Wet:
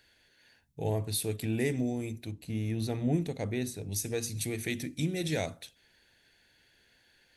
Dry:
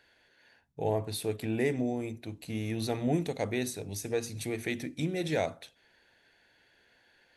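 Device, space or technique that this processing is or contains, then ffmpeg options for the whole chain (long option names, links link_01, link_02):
smiley-face EQ: -filter_complex "[0:a]asettb=1/sr,asplit=3[link_01][link_02][link_03];[link_01]atrim=end=2.314[link_04];[link_02]atrim=start=2.31:end=3.92,asetpts=PTS-STARTPTS,afade=type=in:duration=0.004:curve=qsin,afade=type=out:start_time=1.606:duration=0.004:curve=qsin,highshelf=frequency=2700:gain=-10[link_05];[link_03]atrim=start=3.916[link_06];[link_04][link_05]acrossfade=duration=0.004:curve1=hsin:curve2=qsin[link_07];[link_07][link_06]acrossfade=duration=0.004:curve1=qsin:curve2=hsin,lowshelf=frequency=120:gain=4.5,equalizer=frequency=820:width_type=o:width=2.5:gain=-7,highshelf=frequency=5200:gain=6.5,volume=1.5dB"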